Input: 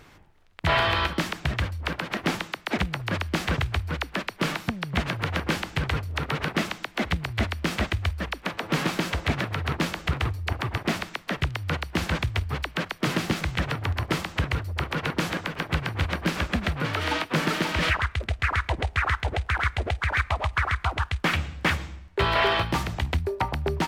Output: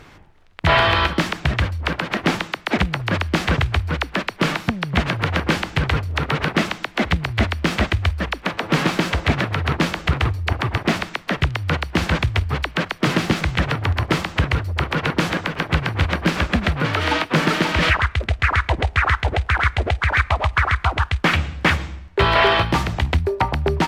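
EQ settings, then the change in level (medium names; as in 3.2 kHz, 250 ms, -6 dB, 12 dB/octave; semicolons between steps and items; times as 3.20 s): treble shelf 8.6 kHz -9 dB; +7.0 dB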